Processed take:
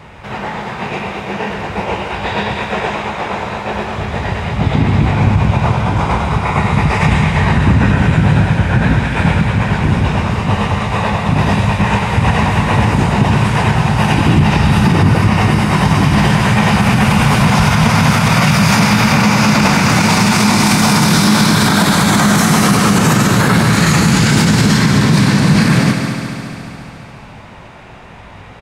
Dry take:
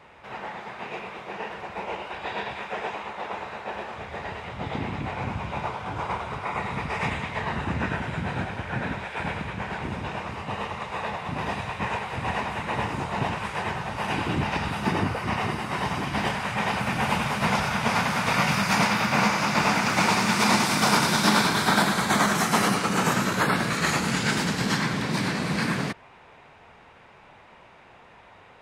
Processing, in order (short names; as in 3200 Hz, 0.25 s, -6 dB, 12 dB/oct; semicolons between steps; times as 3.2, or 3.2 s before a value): tone controls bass +11 dB, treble +4 dB; doubler 19 ms -12 dB; multi-head echo 70 ms, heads second and third, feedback 67%, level -10.5 dB; maximiser +12.5 dB; gain -1 dB